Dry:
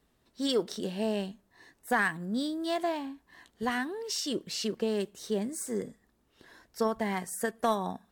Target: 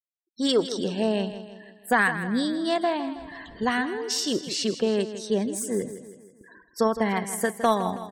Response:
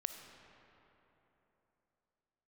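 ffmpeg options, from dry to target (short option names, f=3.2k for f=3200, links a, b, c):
-filter_complex "[0:a]asettb=1/sr,asplit=3[a][b][c];[a]atrim=end=3.064[d];[b]atrim=start=3.06:end=3.64,asetpts=PTS-STARTPTS,afade=t=in:d=0.004:c=qsin,afade=t=out:st=0.576:d=0.004:c=qsin,aeval=exprs='val(0)+0.5*0.00531*sgn(val(0))':c=same[e];[c]atrim=start=3.636[f];[d][e]acrossfade=d=0.004:c1=hsin:c2=qsin[g];[g][f]acrossfade=d=0.004:c1=qsin:c2=hsin,afftfilt=real='re*gte(hypot(re,im),0.00398)':imag='im*gte(hypot(re,im),0.00398)':win_size=1024:overlap=0.75,aecho=1:1:161|322|483|644|805:0.251|0.123|0.0603|0.0296|0.0145,volume=6dB"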